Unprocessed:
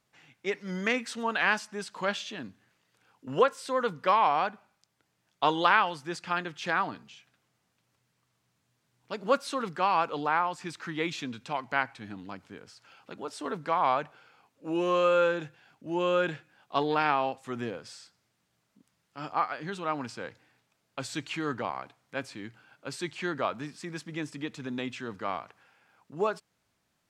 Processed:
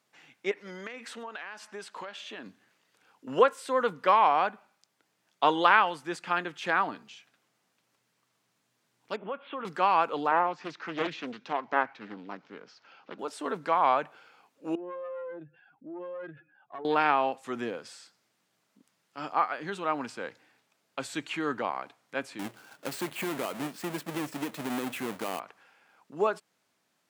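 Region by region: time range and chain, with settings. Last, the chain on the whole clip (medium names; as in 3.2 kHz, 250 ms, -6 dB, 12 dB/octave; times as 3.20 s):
0.51–2.46 s: tone controls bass -9 dB, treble -5 dB + compression 16:1, threshold -37 dBFS
9.16–9.65 s: compression 4:1, threshold -33 dBFS + rippled Chebyshev low-pass 3.4 kHz, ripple 3 dB
10.31–13.19 s: elliptic band-pass 140–6100 Hz + distance through air 100 m + loudspeaker Doppler distortion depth 0.59 ms
14.75–16.85 s: spectral contrast enhancement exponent 2.2 + compression 4:1, threshold -38 dBFS + valve stage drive 32 dB, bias 0.55
22.39–25.40 s: square wave that keeps the level + compression 12:1, threshold -29 dBFS
whole clip: high-pass 220 Hz 12 dB/octave; dynamic bell 5.2 kHz, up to -7 dB, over -52 dBFS, Q 1.4; trim +2 dB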